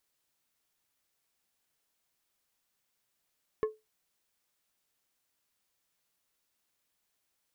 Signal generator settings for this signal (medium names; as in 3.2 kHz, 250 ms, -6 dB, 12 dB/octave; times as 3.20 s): glass hit plate, lowest mode 433 Hz, decay 0.21 s, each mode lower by 9.5 dB, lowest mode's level -22.5 dB